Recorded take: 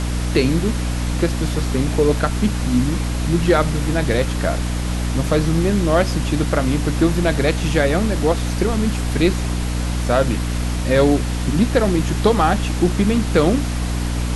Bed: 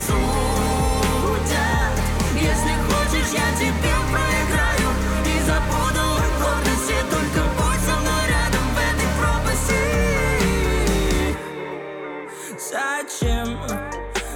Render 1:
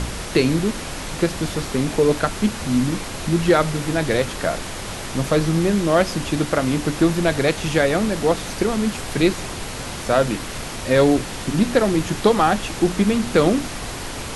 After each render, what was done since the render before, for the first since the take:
hum removal 60 Hz, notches 5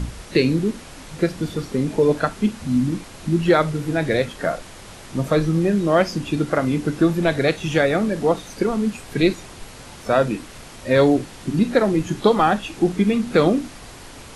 noise reduction from a noise print 10 dB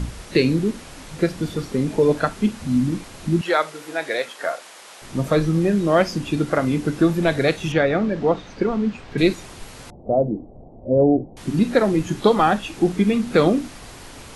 0:03.41–0:05.02: high-pass filter 580 Hz
0:07.72–0:09.18: high-frequency loss of the air 160 metres
0:09.90–0:11.37: elliptic low-pass filter 740 Hz, stop band 60 dB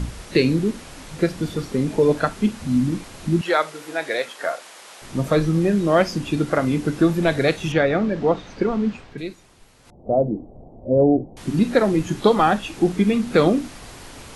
0:08.92–0:10.13: duck −14 dB, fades 0.30 s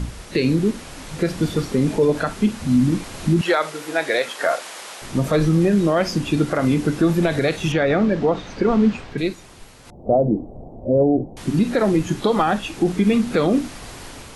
automatic gain control gain up to 9.5 dB
brickwall limiter −8.5 dBFS, peak gain reduction 7.5 dB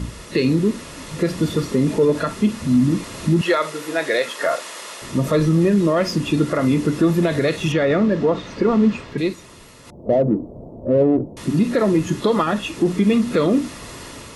in parallel at −8 dB: soft clipping −23.5 dBFS, distortion −6 dB
on the sum: notch comb filter 770 Hz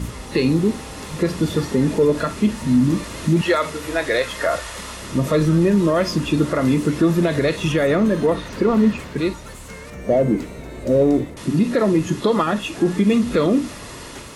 mix in bed −17.5 dB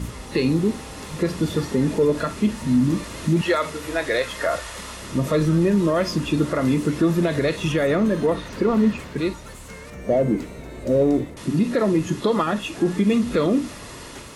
level −2.5 dB

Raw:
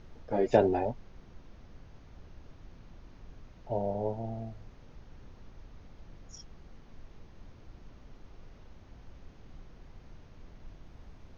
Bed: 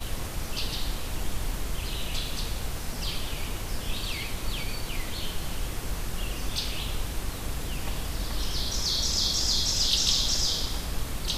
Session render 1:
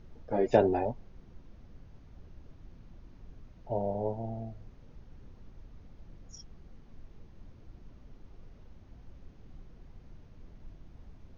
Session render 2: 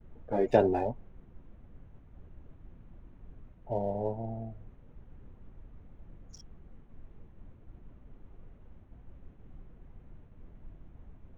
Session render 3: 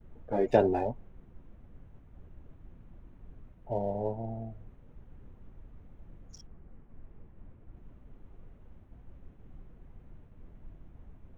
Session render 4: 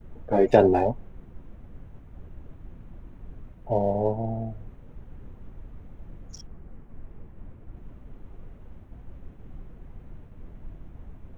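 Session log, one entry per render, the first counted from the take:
broadband denoise 6 dB, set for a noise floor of −54 dBFS
adaptive Wiener filter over 9 samples; downward expander −49 dBFS
0:06.46–0:07.75: low-pass filter 2,200 Hz → 3,300 Hz
level +8 dB; brickwall limiter −3 dBFS, peak gain reduction 3 dB

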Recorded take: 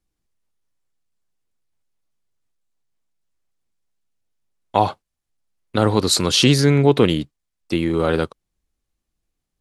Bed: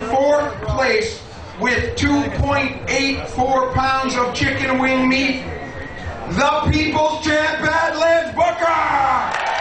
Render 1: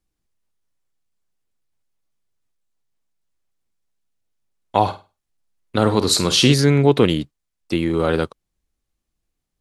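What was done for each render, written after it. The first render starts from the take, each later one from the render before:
0:04.82–0:06.54: flutter between parallel walls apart 8.8 metres, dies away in 0.28 s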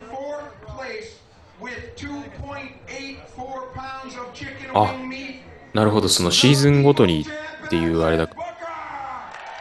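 mix in bed −15.5 dB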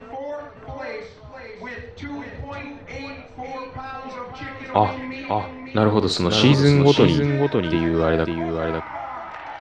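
high-frequency loss of the air 160 metres
single-tap delay 549 ms −5.5 dB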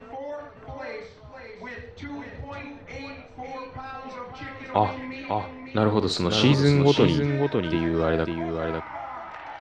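level −4 dB

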